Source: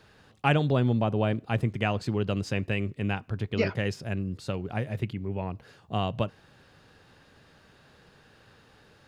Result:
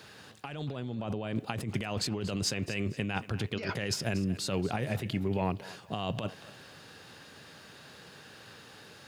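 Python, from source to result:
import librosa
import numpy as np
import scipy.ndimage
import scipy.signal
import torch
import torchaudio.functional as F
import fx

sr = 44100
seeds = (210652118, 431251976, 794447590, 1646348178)

y = scipy.signal.sosfilt(scipy.signal.butter(2, 110.0, 'highpass', fs=sr, output='sos'), x)
y = fx.high_shelf(y, sr, hz=3000.0, db=8.5)
y = fx.over_compress(y, sr, threshold_db=-33.0, ratio=-1.0)
y = fx.echo_thinned(y, sr, ms=235, feedback_pct=34, hz=420.0, wet_db=-15.5)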